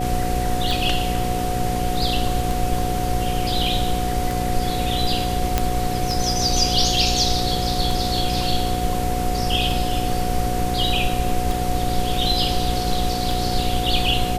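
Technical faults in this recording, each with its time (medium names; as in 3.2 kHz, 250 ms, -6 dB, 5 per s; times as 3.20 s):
buzz 60 Hz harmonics 9 -26 dBFS
tick 33 1/3 rpm
whine 730 Hz -25 dBFS
5.58 s: pop -3 dBFS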